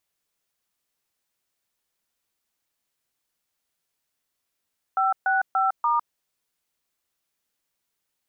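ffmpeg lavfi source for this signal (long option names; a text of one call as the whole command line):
ffmpeg -f lavfi -i "aevalsrc='0.0841*clip(min(mod(t,0.29),0.156-mod(t,0.29))/0.002,0,1)*(eq(floor(t/0.29),0)*(sin(2*PI*770*mod(t,0.29))+sin(2*PI*1336*mod(t,0.29)))+eq(floor(t/0.29),1)*(sin(2*PI*770*mod(t,0.29))+sin(2*PI*1477*mod(t,0.29)))+eq(floor(t/0.29),2)*(sin(2*PI*770*mod(t,0.29))+sin(2*PI*1336*mod(t,0.29)))+eq(floor(t/0.29),3)*(sin(2*PI*941*mod(t,0.29))+sin(2*PI*1209*mod(t,0.29))))':duration=1.16:sample_rate=44100" out.wav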